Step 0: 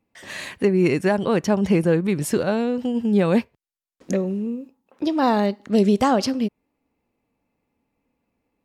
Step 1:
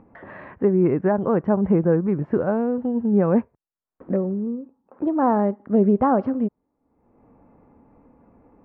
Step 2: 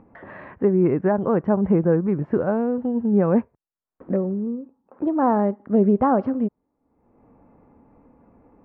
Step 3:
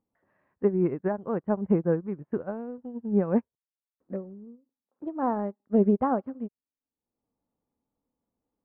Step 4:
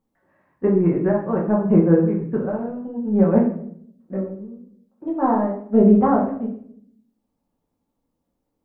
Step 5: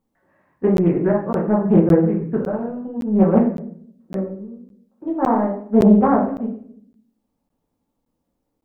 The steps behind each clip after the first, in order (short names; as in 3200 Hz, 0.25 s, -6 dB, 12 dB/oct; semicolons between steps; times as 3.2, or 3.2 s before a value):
LPF 1400 Hz 24 dB/oct; upward compressor, threshold -36 dBFS
nothing audible
upward expander 2.5:1, over -33 dBFS; gain -3 dB
shoebox room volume 110 m³, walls mixed, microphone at 1.1 m; gain +3 dB
crackling interface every 0.56 s, samples 512, zero, from 0.77; Doppler distortion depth 0.38 ms; gain +1.5 dB